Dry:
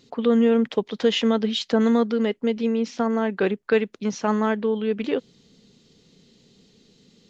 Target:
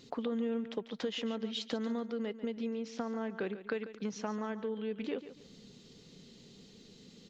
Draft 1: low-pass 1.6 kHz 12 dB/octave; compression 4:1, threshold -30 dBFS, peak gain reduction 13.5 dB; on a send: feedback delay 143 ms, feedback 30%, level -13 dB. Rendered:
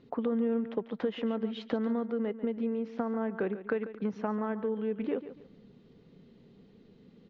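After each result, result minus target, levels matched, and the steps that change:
compression: peak gain reduction -5 dB; 2 kHz band -3.0 dB
change: compression 4:1, threshold -36.5 dBFS, peak gain reduction 18 dB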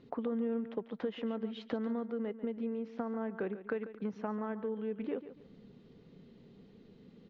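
2 kHz band -3.0 dB
remove: low-pass 1.6 kHz 12 dB/octave

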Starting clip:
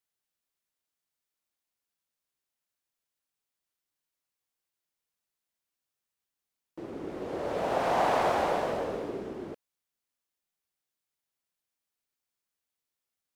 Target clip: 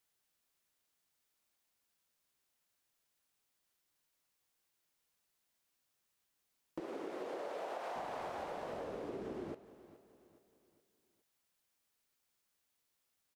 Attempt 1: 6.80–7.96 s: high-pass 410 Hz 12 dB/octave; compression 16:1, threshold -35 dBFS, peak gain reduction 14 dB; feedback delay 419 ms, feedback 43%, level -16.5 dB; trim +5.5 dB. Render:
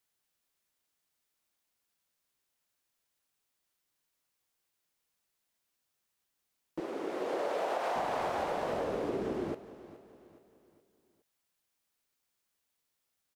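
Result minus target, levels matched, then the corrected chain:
compression: peak gain reduction -9.5 dB
6.80–7.96 s: high-pass 410 Hz 12 dB/octave; compression 16:1, threshold -45 dBFS, peak gain reduction 23.5 dB; feedback delay 419 ms, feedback 43%, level -16.5 dB; trim +5.5 dB

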